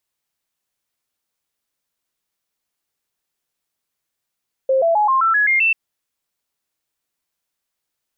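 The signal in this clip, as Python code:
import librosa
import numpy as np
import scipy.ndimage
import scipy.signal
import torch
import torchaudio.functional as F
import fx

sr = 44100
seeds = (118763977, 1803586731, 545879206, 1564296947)

y = fx.stepped_sweep(sr, from_hz=530.0, direction='up', per_octave=3, tones=8, dwell_s=0.13, gap_s=0.0, level_db=-12.5)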